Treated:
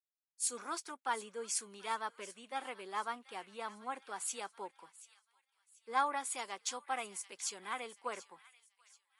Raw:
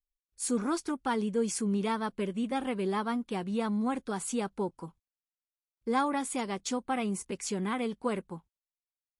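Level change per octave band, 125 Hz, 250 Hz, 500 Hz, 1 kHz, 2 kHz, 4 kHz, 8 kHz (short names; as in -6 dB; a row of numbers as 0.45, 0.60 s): under -25 dB, -23.5 dB, -12.5 dB, -4.0 dB, -3.0 dB, -3.0 dB, -1.0 dB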